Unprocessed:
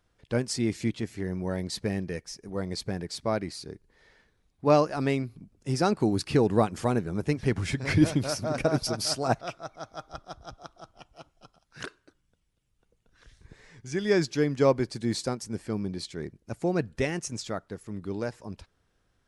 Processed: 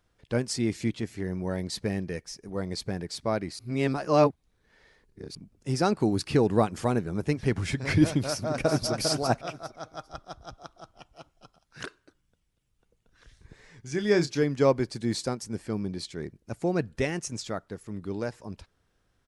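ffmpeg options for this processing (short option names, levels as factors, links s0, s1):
-filter_complex "[0:a]asplit=2[s0][s1];[s1]afade=t=in:st=8.25:d=0.01,afade=t=out:st=8.91:d=0.01,aecho=0:1:400|800|1200:0.501187|0.100237|0.0200475[s2];[s0][s2]amix=inputs=2:normalize=0,asettb=1/sr,asplit=3[s3][s4][s5];[s3]atrim=end=13.884[s6];[s4]atrim=start=13.88:end=14.43,asetpts=PTS-STARTPTS,afade=t=in:d=0.004:c=qsin,afade=t=out:st=0.546:d=0.004:c=qsin,asplit=2[s7][s8];[s8]adelay=29,volume=0.335[s9];[s7][s9]amix=inputs=2:normalize=0,atrim=end_sample=24255[s10];[s5]atrim=start=14.426[s11];[s6][s10]acrossfade=d=0.004:c1=hsin:c2=qsin[s12];[s12][s11]acrossfade=d=0.004:c1=qsin:c2=hsin,asplit=3[s13][s14][s15];[s13]atrim=end=3.592[s16];[s14]atrim=start=3.588:end=5.352,asetpts=PTS-STARTPTS,areverse[s17];[s15]atrim=start=5.348[s18];[s16][s17]acrossfade=d=0.004:c1=hsin:c2=hsin[s19];[s19][s18]acrossfade=d=0.004:c1=hsin:c2=hsin"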